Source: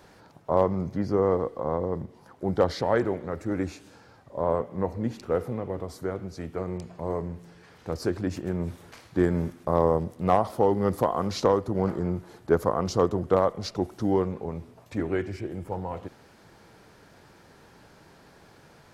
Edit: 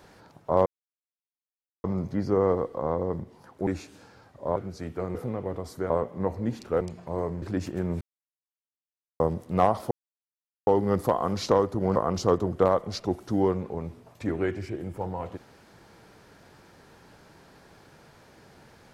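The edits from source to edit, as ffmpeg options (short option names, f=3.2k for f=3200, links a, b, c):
-filter_complex "[0:a]asplit=12[a][b][c][d][e][f][g][h][i][j][k][l];[a]atrim=end=0.66,asetpts=PTS-STARTPTS,afade=t=out:st=0.656:d=0.004:c=hsin,apad=pad_dur=1.18[m];[b]atrim=start=0.66:end=2.492,asetpts=PTS-STARTPTS,afade=t=in:d=0.004:c=hsin[n];[c]atrim=start=3.588:end=4.482[o];[d]atrim=start=6.138:end=6.732[p];[e]atrim=start=5.388:end=6.142[q];[f]atrim=start=4.478:end=5.392[r];[g]atrim=start=6.728:end=7.342[s];[h]atrim=start=8.118:end=8.71,asetpts=PTS-STARTPTS,afade=t=out:st=0.588:d=0.004:c=hsin[t];[i]atrim=start=8.71:end=9.9,asetpts=PTS-STARTPTS,volume=0[u];[j]atrim=start=9.9:end=10.61,asetpts=PTS-STARTPTS,afade=t=in:d=0.004:c=hsin,afade=t=out:st=0.706:d=0.004:c=hsin,apad=pad_dur=0.76[v];[k]atrim=start=10.61:end=11.902,asetpts=PTS-STARTPTS,afade=t=in:d=0.004:c=hsin[w];[l]atrim=start=12.668[x];[m][n]concat=n=2:v=0:a=1[y];[y][o]acrossfade=d=0.004:c1=hsin:c2=hsin[z];[z][p]acrossfade=d=0.004:c1=hsin:c2=hsin[aa];[aa][q]acrossfade=d=0.004:c1=hsin:c2=hsin[ab];[ab][r]acrossfade=d=0.004:c1=hsin:c2=hsin[ac];[ac][s]acrossfade=d=0.004:c1=hsin:c2=hsin[ad];[t][u][v][w]concat=n=4:v=0:a=1[ae];[ad][ae]acrossfade=d=0.004:c1=hsin:c2=hsin[af];[af][x]acrossfade=d=0.004:c1=hsin:c2=hsin"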